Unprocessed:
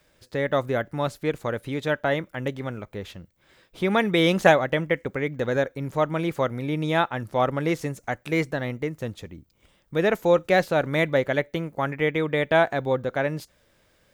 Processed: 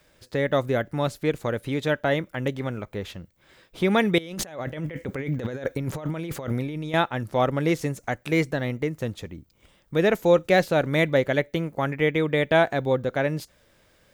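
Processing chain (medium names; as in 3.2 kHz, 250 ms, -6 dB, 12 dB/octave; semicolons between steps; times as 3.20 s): dynamic bell 1.1 kHz, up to -4 dB, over -35 dBFS, Q 0.75; 4.18–6.94 s: compressor with a negative ratio -34 dBFS, ratio -1; trim +2.5 dB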